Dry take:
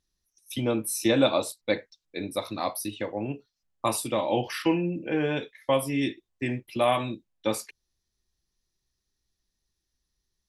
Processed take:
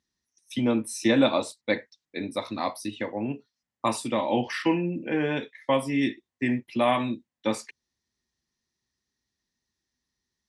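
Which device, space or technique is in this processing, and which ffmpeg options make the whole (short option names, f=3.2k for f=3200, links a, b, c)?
car door speaker: -af "highpass=83,equalizer=f=240:t=q:w=4:g=8,equalizer=f=950:t=q:w=4:g=4,equalizer=f=1.9k:t=q:w=4:g=7,lowpass=f=8.8k:w=0.5412,lowpass=f=8.8k:w=1.3066,volume=-1dB"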